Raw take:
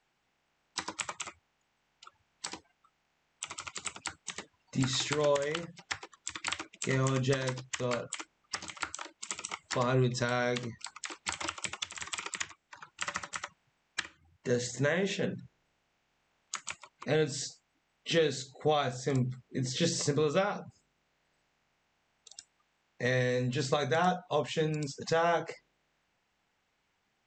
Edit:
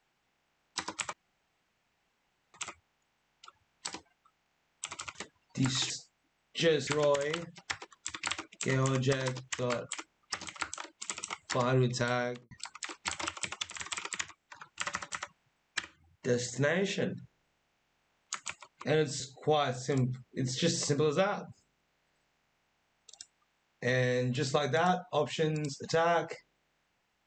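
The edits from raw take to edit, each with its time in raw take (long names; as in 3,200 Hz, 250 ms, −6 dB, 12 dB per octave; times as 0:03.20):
0:01.13: splice in room tone 1.41 s
0:03.74–0:04.33: remove
0:10.33–0:10.72: fade out and dull
0:17.41–0:18.38: move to 0:05.08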